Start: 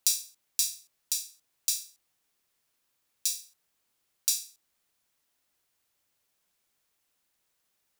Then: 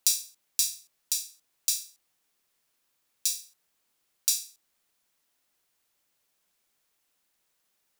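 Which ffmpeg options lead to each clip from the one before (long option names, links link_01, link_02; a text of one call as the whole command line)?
ffmpeg -i in.wav -af "equalizer=frequency=83:width=1.5:gain=-6.5,volume=1.5dB" out.wav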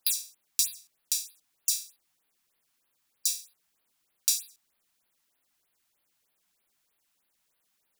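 ffmpeg -i in.wav -af "afftfilt=real='re*(1-between(b*sr/1024,400*pow(7300/400,0.5+0.5*sin(2*PI*3.2*pts/sr))/1.41,400*pow(7300/400,0.5+0.5*sin(2*PI*3.2*pts/sr))*1.41))':imag='im*(1-between(b*sr/1024,400*pow(7300/400,0.5+0.5*sin(2*PI*3.2*pts/sr))/1.41,400*pow(7300/400,0.5+0.5*sin(2*PI*3.2*pts/sr))*1.41))':win_size=1024:overlap=0.75" out.wav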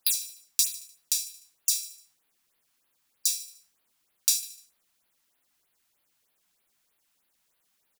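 ffmpeg -i in.wav -af "aecho=1:1:75|150|225|300:0.158|0.0777|0.0381|0.0186,volume=2dB" out.wav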